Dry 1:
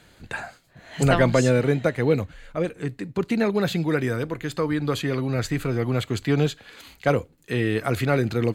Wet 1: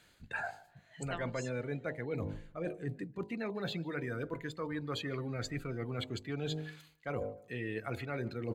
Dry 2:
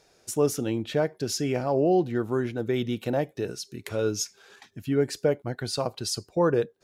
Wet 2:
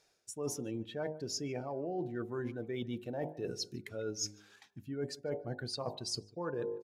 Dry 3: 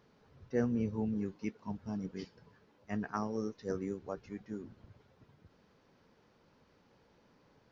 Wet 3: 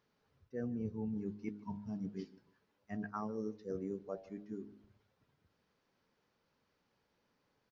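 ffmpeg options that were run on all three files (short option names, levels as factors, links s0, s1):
-filter_complex "[0:a]afftdn=nr=14:nf=-33,tiltshelf=f=970:g=-3,bandreject=f=51.72:t=h:w=4,bandreject=f=103.44:t=h:w=4,bandreject=f=155.16:t=h:w=4,bandreject=f=206.88:t=h:w=4,bandreject=f=258.6:t=h:w=4,bandreject=f=310.32:t=h:w=4,bandreject=f=362.04:t=h:w=4,bandreject=f=413.76:t=h:w=4,bandreject=f=465.48:t=h:w=4,bandreject=f=517.2:t=h:w=4,bandreject=f=568.92:t=h:w=4,bandreject=f=620.64:t=h:w=4,bandreject=f=672.36:t=h:w=4,bandreject=f=724.08:t=h:w=4,bandreject=f=775.8:t=h:w=4,bandreject=f=827.52:t=h:w=4,bandreject=f=879.24:t=h:w=4,bandreject=f=930.96:t=h:w=4,bandreject=f=982.68:t=h:w=4,bandreject=f=1034.4:t=h:w=4,areverse,acompressor=threshold=0.0112:ratio=8,areverse,asplit=2[s0][s1];[s1]adelay=149,lowpass=f=2000:p=1,volume=0.1,asplit=2[s2][s3];[s3]adelay=149,lowpass=f=2000:p=1,volume=0.26[s4];[s0][s2][s4]amix=inputs=3:normalize=0,volume=1.5"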